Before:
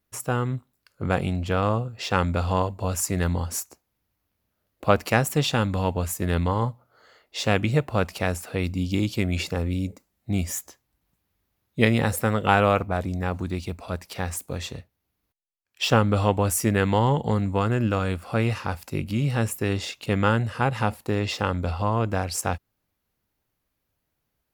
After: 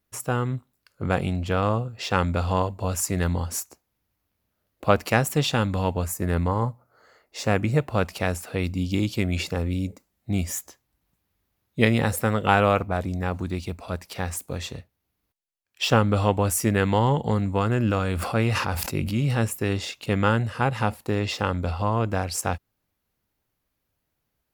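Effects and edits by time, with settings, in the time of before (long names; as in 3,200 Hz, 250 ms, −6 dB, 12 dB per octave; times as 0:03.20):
0:06.04–0:07.78: parametric band 3,300 Hz −9.5 dB 0.72 octaves
0:17.66–0:19.45: level that may fall only so fast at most 33 dB per second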